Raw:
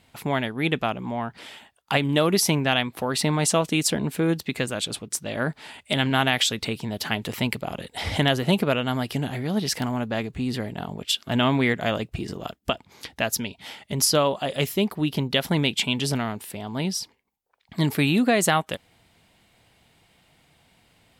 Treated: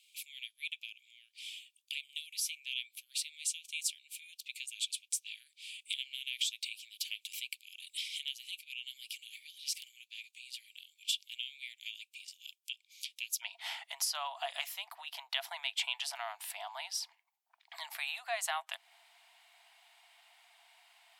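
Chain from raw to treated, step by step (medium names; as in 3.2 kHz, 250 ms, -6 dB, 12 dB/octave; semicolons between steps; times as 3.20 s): compression 3:1, threshold -32 dBFS, peak gain reduction 12.5 dB; rippled Chebyshev high-pass 2.3 kHz, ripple 3 dB, from 13.41 s 670 Hz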